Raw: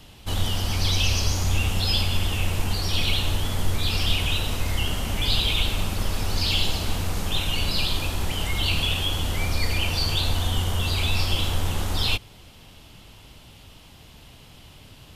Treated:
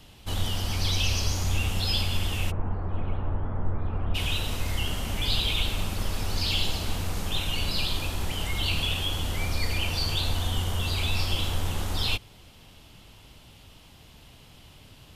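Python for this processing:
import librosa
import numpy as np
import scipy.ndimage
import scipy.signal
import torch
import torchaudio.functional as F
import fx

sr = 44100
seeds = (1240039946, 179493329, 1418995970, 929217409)

y = fx.lowpass(x, sr, hz=1400.0, slope=24, at=(2.5, 4.14), fade=0.02)
y = y * 10.0 ** (-3.5 / 20.0)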